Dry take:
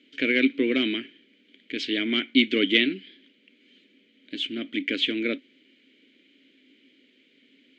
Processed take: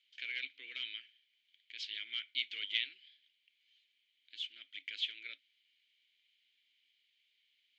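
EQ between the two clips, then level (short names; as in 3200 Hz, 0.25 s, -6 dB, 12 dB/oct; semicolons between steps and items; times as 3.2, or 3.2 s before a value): band-pass 5700 Hz, Q 0.53; air absorption 130 m; differentiator; 0.0 dB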